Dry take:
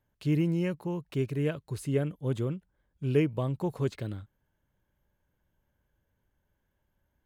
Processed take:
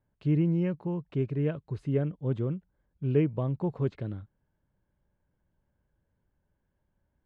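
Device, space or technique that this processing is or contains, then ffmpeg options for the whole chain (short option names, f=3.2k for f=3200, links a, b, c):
phone in a pocket: -af "lowpass=3.9k,equalizer=f=170:t=o:w=0.77:g=2.5,highshelf=f=2k:g=-10"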